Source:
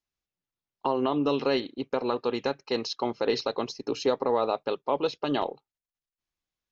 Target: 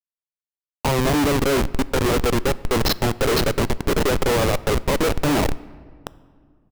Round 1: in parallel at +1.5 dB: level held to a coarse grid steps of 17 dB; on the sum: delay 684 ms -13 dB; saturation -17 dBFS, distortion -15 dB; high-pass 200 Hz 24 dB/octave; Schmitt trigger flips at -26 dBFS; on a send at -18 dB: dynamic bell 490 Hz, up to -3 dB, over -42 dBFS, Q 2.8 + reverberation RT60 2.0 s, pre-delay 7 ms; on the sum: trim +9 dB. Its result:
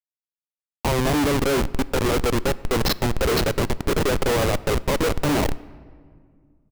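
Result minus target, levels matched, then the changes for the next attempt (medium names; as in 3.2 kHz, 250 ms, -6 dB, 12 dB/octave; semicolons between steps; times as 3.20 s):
saturation: distortion +11 dB
change: saturation -9.5 dBFS, distortion -26 dB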